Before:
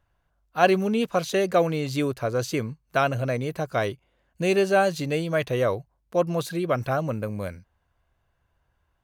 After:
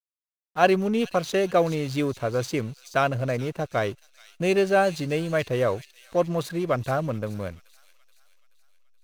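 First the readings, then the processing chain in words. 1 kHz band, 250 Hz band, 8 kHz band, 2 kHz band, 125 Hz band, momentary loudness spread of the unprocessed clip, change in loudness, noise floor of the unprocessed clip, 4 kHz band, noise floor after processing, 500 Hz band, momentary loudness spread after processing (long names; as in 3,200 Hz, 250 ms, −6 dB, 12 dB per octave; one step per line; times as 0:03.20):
0.0 dB, 0.0 dB, −1.5 dB, −0.5 dB, 0.0 dB, 9 LU, 0.0 dB, −72 dBFS, −0.5 dB, below −85 dBFS, 0.0 dB, 10 LU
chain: slack as between gear wheels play −36 dBFS
delay with a high-pass on its return 428 ms, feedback 50%, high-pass 4,100 Hz, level −7.5 dB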